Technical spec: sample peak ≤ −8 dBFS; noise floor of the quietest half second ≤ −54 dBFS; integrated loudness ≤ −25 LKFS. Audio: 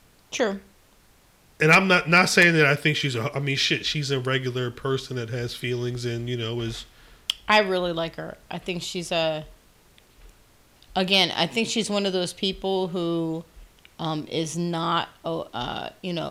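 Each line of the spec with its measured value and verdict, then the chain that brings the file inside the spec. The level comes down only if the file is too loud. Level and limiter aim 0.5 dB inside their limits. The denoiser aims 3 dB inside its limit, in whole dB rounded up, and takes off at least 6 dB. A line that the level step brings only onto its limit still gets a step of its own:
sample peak −5.5 dBFS: out of spec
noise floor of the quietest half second −57 dBFS: in spec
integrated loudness −23.5 LKFS: out of spec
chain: level −2 dB
brickwall limiter −8.5 dBFS

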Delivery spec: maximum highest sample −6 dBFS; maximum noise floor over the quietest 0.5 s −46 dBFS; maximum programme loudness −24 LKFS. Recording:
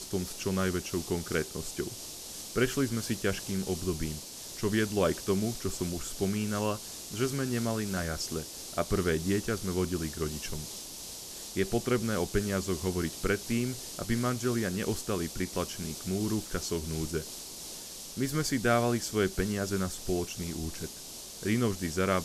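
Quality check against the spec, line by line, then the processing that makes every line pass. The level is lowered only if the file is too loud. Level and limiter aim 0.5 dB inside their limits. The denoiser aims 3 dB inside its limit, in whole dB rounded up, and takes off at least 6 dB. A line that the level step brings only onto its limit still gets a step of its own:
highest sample −13.0 dBFS: in spec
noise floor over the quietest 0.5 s −44 dBFS: out of spec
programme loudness −32.0 LKFS: in spec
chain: broadband denoise 6 dB, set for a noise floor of −44 dBFS

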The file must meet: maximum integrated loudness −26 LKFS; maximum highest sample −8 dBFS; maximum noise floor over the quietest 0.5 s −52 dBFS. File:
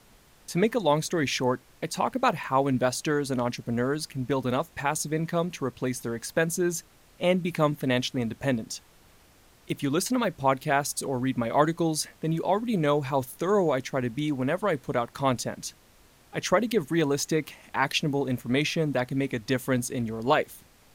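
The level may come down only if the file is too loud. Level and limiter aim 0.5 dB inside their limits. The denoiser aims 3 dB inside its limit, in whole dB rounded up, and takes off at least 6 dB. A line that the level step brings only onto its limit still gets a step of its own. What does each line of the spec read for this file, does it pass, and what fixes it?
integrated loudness −27.5 LKFS: in spec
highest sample −7.0 dBFS: out of spec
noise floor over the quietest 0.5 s −57 dBFS: in spec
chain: brickwall limiter −8.5 dBFS

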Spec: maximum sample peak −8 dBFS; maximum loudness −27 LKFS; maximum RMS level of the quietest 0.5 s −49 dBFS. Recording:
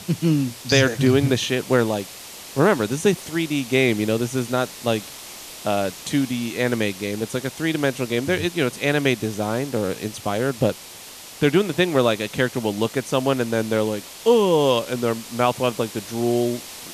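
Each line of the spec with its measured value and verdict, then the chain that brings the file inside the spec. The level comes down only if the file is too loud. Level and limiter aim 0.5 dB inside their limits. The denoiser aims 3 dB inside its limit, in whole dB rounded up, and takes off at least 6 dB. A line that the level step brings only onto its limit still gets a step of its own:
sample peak −5.0 dBFS: out of spec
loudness −22.0 LKFS: out of spec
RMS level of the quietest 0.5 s −40 dBFS: out of spec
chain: broadband denoise 7 dB, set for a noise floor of −40 dBFS
level −5.5 dB

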